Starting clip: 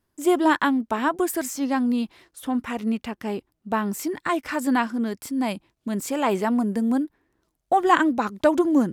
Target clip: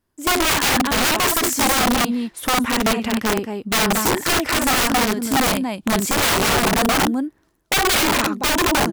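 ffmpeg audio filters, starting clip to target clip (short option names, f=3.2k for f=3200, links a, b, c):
-af "dynaudnorm=f=120:g=7:m=8.5dB,aecho=1:1:55.39|227.4:0.501|0.398,aeval=exprs='(mod(4.22*val(0)+1,2)-1)/4.22':c=same"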